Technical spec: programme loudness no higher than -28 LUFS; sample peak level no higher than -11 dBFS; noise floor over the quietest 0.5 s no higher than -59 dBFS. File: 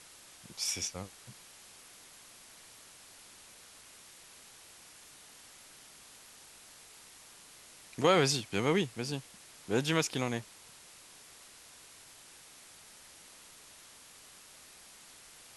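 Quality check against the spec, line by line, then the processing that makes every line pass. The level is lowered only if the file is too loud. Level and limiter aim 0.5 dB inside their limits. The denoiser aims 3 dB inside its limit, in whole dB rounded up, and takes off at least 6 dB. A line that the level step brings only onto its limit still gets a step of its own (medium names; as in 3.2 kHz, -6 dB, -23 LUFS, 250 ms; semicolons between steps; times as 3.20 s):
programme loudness -31.5 LUFS: pass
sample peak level -13.0 dBFS: pass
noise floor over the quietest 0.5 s -55 dBFS: fail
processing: noise reduction 7 dB, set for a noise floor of -55 dBFS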